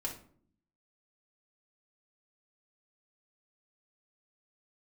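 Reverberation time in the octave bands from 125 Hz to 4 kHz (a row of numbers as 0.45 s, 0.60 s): 0.95 s, 0.95 s, 0.60 s, 0.50 s, 0.40 s, 0.30 s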